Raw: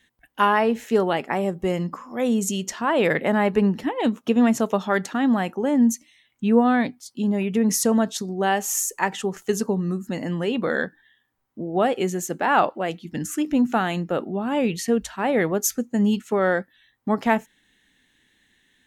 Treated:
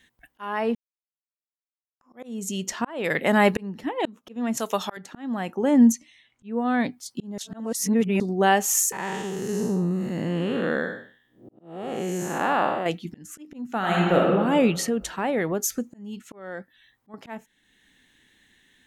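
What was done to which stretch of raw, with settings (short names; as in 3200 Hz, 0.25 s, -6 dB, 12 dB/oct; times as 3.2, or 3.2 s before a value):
0.75–2.01 mute
3.04–3.63 high shelf 2400 Hz +9 dB
4.57–4.97 tilt +3.5 dB/oct
5.92–6.56 air absorption 53 m
7.38–8.2 reverse
8.92–12.86 time blur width 0.264 s
13.78–14.28 reverb throw, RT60 1.6 s, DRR -2.5 dB
14.86–17.14 compressor 2:1, threshold -28 dBFS
whole clip: auto swell 0.634 s; gain +2.5 dB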